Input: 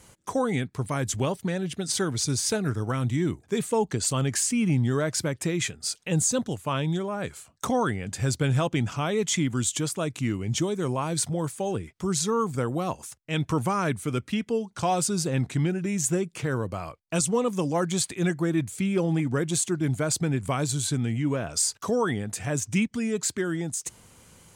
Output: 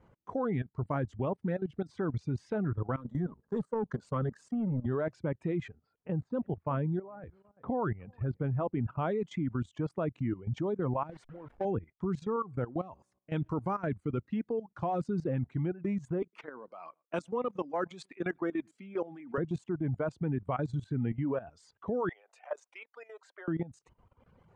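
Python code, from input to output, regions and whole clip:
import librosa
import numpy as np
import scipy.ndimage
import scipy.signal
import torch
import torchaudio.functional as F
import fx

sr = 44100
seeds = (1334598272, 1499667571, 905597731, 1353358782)

y = fx.chain(x, sr, fx.fixed_phaser(hz=480.0, stages=8),
    fx.power_curve(exponent=1.4),
    fx.env_flatten(amount_pct=50), at=(2.96, 4.86))
y = fx.chain(y, sr, fx.air_absorb(metres=440.0),
    fx.echo_single(ms=361, db=-20.5), at=(5.68, 8.98))
y = fx.chain(y, sr, fx.delta_hold(step_db=-30.5),
    fx.low_shelf(hz=210.0, db=-10.0), at=(11.11, 11.65))
y = fx.chain(y, sr, fx.high_shelf(hz=5500.0, db=9.5),
    fx.comb_fb(f0_hz=63.0, decay_s=0.84, harmonics='all', damping=0.0, mix_pct=30), at=(12.36, 13.87))
y = fx.chain(y, sr, fx.highpass(hz=210.0, slope=24),
    fx.tilt_shelf(db=-5.5, hz=970.0),
    fx.echo_single(ms=108, db=-23.5), at=(16.22, 19.38))
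y = fx.chain(y, sr, fx.steep_highpass(hz=540.0, slope=36),
    fx.notch(hz=1700.0, q=21.0), at=(22.09, 23.48))
y = scipy.signal.sosfilt(scipy.signal.butter(2, 1200.0, 'lowpass', fs=sr, output='sos'), y)
y = fx.dereverb_blind(y, sr, rt60_s=1.2)
y = fx.level_steps(y, sr, step_db=16)
y = y * librosa.db_to_amplitude(1.5)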